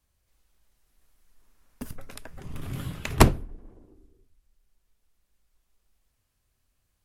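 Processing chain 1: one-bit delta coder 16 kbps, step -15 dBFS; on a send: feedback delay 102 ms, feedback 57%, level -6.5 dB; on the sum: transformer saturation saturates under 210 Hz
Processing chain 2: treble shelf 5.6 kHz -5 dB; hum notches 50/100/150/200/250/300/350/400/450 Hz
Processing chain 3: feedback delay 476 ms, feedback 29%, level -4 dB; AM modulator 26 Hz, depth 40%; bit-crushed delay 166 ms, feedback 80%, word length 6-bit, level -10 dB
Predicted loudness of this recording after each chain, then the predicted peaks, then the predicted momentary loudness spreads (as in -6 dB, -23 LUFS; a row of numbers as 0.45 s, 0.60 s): -27.5 LUFS, -26.5 LUFS, -29.0 LUFS; -2.5 dBFS, -2.5 dBFS, -5.0 dBFS; 17 LU, 23 LU, 22 LU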